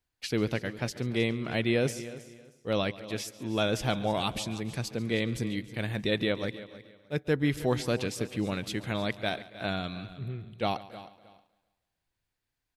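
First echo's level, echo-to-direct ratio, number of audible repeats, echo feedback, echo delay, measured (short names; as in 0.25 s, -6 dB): -18.5 dB, -13.0 dB, 7, no steady repeat, 0.14 s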